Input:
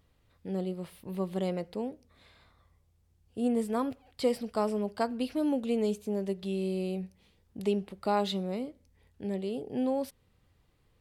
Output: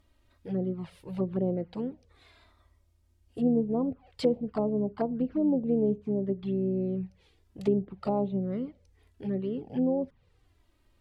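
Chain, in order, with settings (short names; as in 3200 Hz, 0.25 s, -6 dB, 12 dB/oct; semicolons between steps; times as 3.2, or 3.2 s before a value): envelope flanger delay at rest 3.3 ms, full sweep at -26.5 dBFS; treble ducked by the level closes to 630 Hz, closed at -28.5 dBFS; harmoniser -7 st -14 dB; gain +4 dB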